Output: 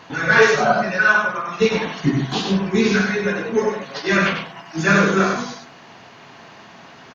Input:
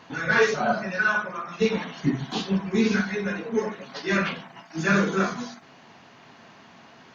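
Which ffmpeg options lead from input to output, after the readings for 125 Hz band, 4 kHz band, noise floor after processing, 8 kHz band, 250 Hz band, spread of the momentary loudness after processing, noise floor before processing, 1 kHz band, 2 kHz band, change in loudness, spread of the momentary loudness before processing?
+6.5 dB, +7.5 dB, -44 dBFS, no reading, +5.0 dB, 11 LU, -51 dBFS, +8.0 dB, +8.0 dB, +7.0 dB, 12 LU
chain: -filter_complex "[0:a]equalizer=f=230:t=o:w=0.51:g=-4,asplit=2[s0][s1];[s1]aecho=0:1:98:0.562[s2];[s0][s2]amix=inputs=2:normalize=0,volume=2.11"

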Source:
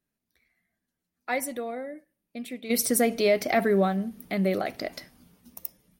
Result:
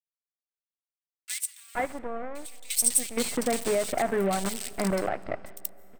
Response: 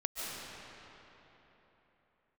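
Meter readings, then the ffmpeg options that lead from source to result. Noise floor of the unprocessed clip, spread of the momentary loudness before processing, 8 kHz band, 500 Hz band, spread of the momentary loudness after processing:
-85 dBFS, 18 LU, +6.5 dB, -3.0 dB, 14 LU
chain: -filter_complex "[0:a]highpass=f=68:p=1,adynamicequalizer=threshold=0.0112:dfrequency=810:dqfactor=1.4:tfrequency=810:tqfactor=1.4:attack=5:release=100:ratio=0.375:range=2:mode=boostabove:tftype=bell,acrusher=bits=5:dc=4:mix=0:aa=0.000001,acompressor=threshold=0.0708:ratio=6,equalizer=f=8300:t=o:w=0.21:g=15,acrossover=split=2400[s0][s1];[s0]adelay=470[s2];[s2][s1]amix=inputs=2:normalize=0,asplit=2[s3][s4];[1:a]atrim=start_sample=2205[s5];[s4][s5]afir=irnorm=-1:irlink=0,volume=0.0596[s6];[s3][s6]amix=inputs=2:normalize=0"

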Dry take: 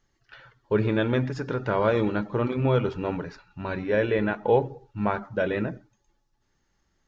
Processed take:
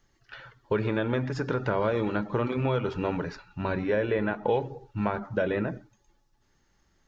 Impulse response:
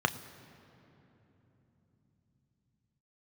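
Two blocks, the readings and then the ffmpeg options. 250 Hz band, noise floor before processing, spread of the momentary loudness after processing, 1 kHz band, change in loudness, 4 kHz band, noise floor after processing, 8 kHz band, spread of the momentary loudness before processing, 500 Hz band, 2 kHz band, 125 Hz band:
-2.5 dB, -72 dBFS, 11 LU, -2.0 dB, -3.0 dB, -2.5 dB, -69 dBFS, no reading, 10 LU, -3.0 dB, -2.0 dB, -3.0 dB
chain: -filter_complex "[0:a]acrossover=split=660|1500[s0][s1][s2];[s0]acompressor=threshold=0.0316:ratio=4[s3];[s1]acompressor=threshold=0.0158:ratio=4[s4];[s2]acompressor=threshold=0.00631:ratio=4[s5];[s3][s4][s5]amix=inputs=3:normalize=0,volume=1.5"

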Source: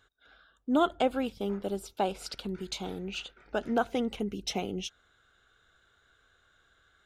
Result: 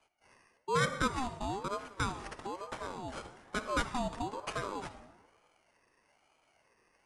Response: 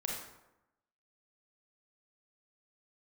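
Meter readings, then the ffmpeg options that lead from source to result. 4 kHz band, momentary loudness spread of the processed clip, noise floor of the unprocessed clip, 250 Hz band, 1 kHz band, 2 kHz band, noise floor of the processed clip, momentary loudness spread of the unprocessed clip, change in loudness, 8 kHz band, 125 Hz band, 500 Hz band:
-4.5 dB, 12 LU, -68 dBFS, -9.0 dB, -1.5 dB, +3.5 dB, -73 dBFS, 11 LU, -4.0 dB, -1.5 dB, +1.5 dB, -7.0 dB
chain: -filter_complex "[0:a]acrusher=samples=12:mix=1:aa=0.000001,aresample=22050,aresample=44100,asplit=2[s0][s1];[1:a]atrim=start_sample=2205,asetrate=30429,aresample=44100[s2];[s1][s2]afir=irnorm=-1:irlink=0,volume=0.299[s3];[s0][s3]amix=inputs=2:normalize=0,aeval=exprs='val(0)*sin(2*PI*640*n/s+640*0.35/1.1*sin(2*PI*1.1*n/s))':c=same,volume=0.631"

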